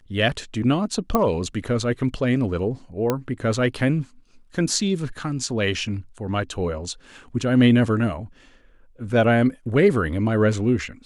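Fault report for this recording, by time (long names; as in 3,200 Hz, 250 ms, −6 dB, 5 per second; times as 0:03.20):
0:01.15: click −7 dBFS
0:03.10: click −8 dBFS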